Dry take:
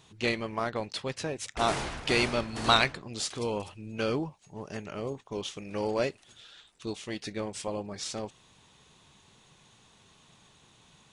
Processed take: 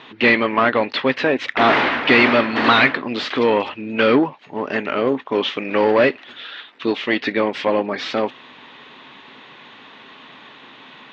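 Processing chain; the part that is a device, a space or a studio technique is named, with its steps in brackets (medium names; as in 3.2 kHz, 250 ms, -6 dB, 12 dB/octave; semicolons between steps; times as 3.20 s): overdrive pedal into a guitar cabinet (overdrive pedal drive 25 dB, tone 2.8 kHz, clips at -7 dBFS; cabinet simulation 100–3600 Hz, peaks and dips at 100 Hz -8 dB, 170 Hz -6 dB, 260 Hz +10 dB, 750 Hz -3 dB, 1.9 kHz +4 dB); trim +3.5 dB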